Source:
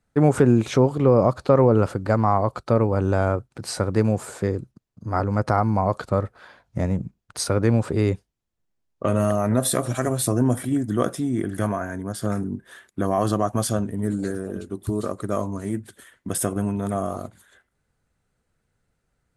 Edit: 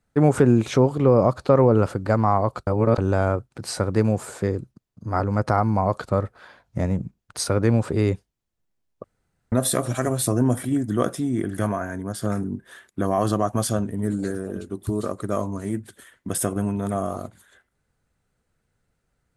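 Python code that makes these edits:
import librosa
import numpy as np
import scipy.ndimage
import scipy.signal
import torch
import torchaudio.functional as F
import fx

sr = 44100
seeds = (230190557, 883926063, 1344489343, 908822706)

y = fx.edit(x, sr, fx.reverse_span(start_s=2.67, length_s=0.31),
    fx.room_tone_fill(start_s=9.04, length_s=0.48), tone=tone)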